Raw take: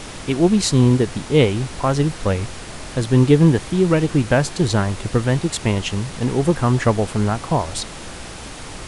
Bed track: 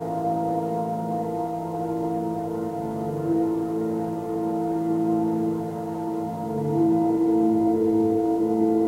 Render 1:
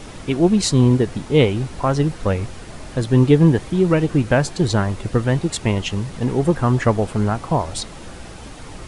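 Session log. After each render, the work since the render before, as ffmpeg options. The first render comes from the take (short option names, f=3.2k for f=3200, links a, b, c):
-af "afftdn=nr=7:nf=-34"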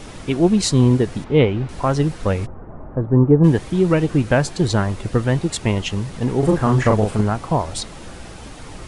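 -filter_complex "[0:a]asettb=1/sr,asplit=3[a][b][c];[a]atrim=end=1.244[d];[b]atrim=start=1.24:end=1.69,asetpts=PTS-STARTPTS,afade=t=in:d=0.004:c=qsin,afade=t=out:st=0.446:d=0.004:c=qsin,lowpass=2.8k[e];[c]atrim=start=1.686[f];[d][e]acrossfade=d=0.004:c1=hsin:c2=qsin[g];[g][f]acrossfade=d=0.004:c1=qsin:c2=hsin,asplit=3[h][i][j];[h]afade=t=out:st=2.45:d=0.02[k];[i]lowpass=f=1.2k:w=0.5412,lowpass=f=1.2k:w=1.3066,afade=t=in:st=2.45:d=0.02,afade=t=out:st=3.43:d=0.02[l];[j]afade=t=in:st=3.43:d=0.02[m];[k][l][m]amix=inputs=3:normalize=0,asettb=1/sr,asplit=3[n][o][p];[n]atrim=end=6.394[q];[o]atrim=start=6.39:end=7.21,asetpts=PTS-STARTPTS,afade=t=in:d=0.004:c=qsin,afade=t=out:st=0.816:d=0.004:c=qsin,asplit=2[r][s];[s]adelay=38,volume=-3dB[t];[r][t]amix=inputs=2:normalize=0,atrim=end_sample=36162[u];[p]atrim=start=7.206[v];[q][u]acrossfade=d=0.004:c1=hsin:c2=qsin[w];[w][v]acrossfade=d=0.004:c1=qsin:c2=hsin"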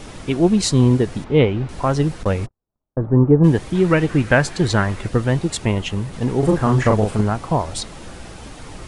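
-filter_complex "[0:a]asettb=1/sr,asplit=3[a][b][c];[a]atrim=end=2.234[d];[b]atrim=start=2.23:end=3.04,asetpts=PTS-STARTPTS,afade=t=in:d=0.004:c=qsin,afade=t=out:st=0.806:d=0.004:c=qsin,agate=range=-50dB:threshold=-27dB:ratio=16:release=100:detection=peak[e];[c]atrim=start=3.036[f];[d][e]acrossfade=d=0.004:c1=hsin:c2=qsin[g];[g][f]acrossfade=d=0.004:c1=qsin:c2=hsin,asettb=1/sr,asplit=3[h][i][j];[h]atrim=end=3.754[k];[i]atrim=start=3.75:end=5.08,asetpts=PTS-STARTPTS,afade=t=in:d=0.004:c=qsin,afade=t=out:st=1.326:d=0.004:c=qsin,equalizer=f=1.8k:w=1.2:g=7[l];[j]atrim=start=5.076[m];[k][l]acrossfade=d=0.004:c1=hsin:c2=qsin[n];[n][m]acrossfade=d=0.004:c1=qsin:c2=hsin,asettb=1/sr,asplit=3[o][p][q];[o]atrim=end=5.654[r];[p]atrim=start=5.65:end=6.13,asetpts=PTS-STARTPTS,afade=t=in:d=0.004:c=qsin,afade=t=out:st=0.476:d=0.004:c=qsin,equalizer=f=5.4k:t=o:w=1.1:g=-4.5[s];[q]atrim=start=6.126[t];[r][s]acrossfade=d=0.004:c1=hsin:c2=qsin[u];[u][t]acrossfade=d=0.004:c1=qsin:c2=hsin"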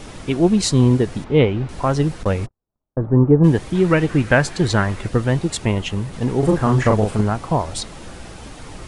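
-af anull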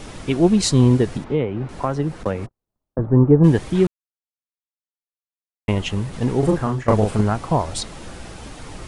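-filter_complex "[0:a]asettb=1/sr,asplit=3[a][b][c];[a]atrim=end=1.174[d];[b]atrim=start=1.17:end=2.99,asetpts=PTS-STARTPTS,afade=t=in:d=0.004:c=qsin,afade=t=out:st=1.816:d=0.004:c=qsin,acrossover=split=130|2100[e][f][g];[e]acompressor=threshold=-36dB:ratio=4[h];[f]acompressor=threshold=-18dB:ratio=4[i];[g]acompressor=threshold=-48dB:ratio=4[j];[h][i][j]amix=inputs=3:normalize=0[k];[c]atrim=start=2.986[l];[d][k]acrossfade=d=0.004:c1=hsin:c2=qsin[m];[m][l]acrossfade=d=0.004:c1=qsin:c2=hsin,asplit=4[n][o][p][q];[n]atrim=end=3.87,asetpts=PTS-STARTPTS,afade=t=out:st=3.866:d=0.004:c=hsin[r];[o]atrim=start=3.87:end=5.68,asetpts=PTS-STARTPTS,volume=0[s];[p]atrim=start=5.68:end=6.88,asetpts=PTS-STARTPTS,afade=t=in:d=0.004:c=hsin,afade=t=out:st=0.57:d=0.63:c=qsin:silence=0.125893[t];[q]atrim=start=6.88,asetpts=PTS-STARTPTS,afade=t=in:d=0.004:c=hsin:silence=0.125893[u];[r][s][t][u]concat=n=4:v=0:a=1"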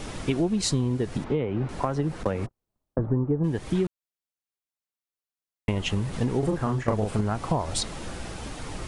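-af "acompressor=threshold=-21dB:ratio=10"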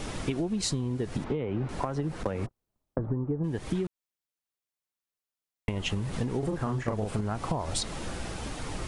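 -af "acompressor=threshold=-26dB:ratio=6"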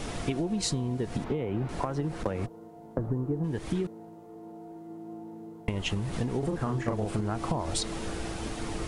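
-filter_complex "[1:a]volume=-19.5dB[a];[0:a][a]amix=inputs=2:normalize=0"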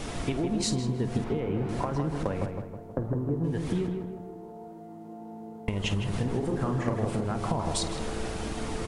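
-filter_complex "[0:a]asplit=2[a][b];[b]adelay=50,volume=-13.5dB[c];[a][c]amix=inputs=2:normalize=0,asplit=2[d][e];[e]adelay=159,lowpass=f=1.8k:p=1,volume=-4.5dB,asplit=2[f][g];[g]adelay=159,lowpass=f=1.8k:p=1,volume=0.52,asplit=2[h][i];[i]adelay=159,lowpass=f=1.8k:p=1,volume=0.52,asplit=2[j][k];[k]adelay=159,lowpass=f=1.8k:p=1,volume=0.52,asplit=2[l][m];[m]adelay=159,lowpass=f=1.8k:p=1,volume=0.52,asplit=2[n][o];[o]adelay=159,lowpass=f=1.8k:p=1,volume=0.52,asplit=2[p][q];[q]adelay=159,lowpass=f=1.8k:p=1,volume=0.52[r];[d][f][h][j][l][n][p][r]amix=inputs=8:normalize=0"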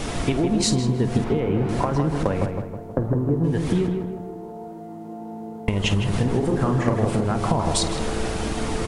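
-af "volume=7.5dB"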